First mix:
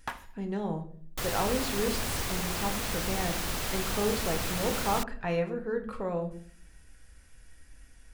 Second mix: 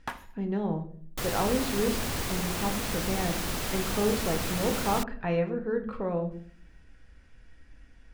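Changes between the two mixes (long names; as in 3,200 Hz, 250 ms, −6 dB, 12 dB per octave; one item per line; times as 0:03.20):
speech: add low-pass filter 3,800 Hz 12 dB per octave
master: add parametric band 240 Hz +4 dB 1.9 octaves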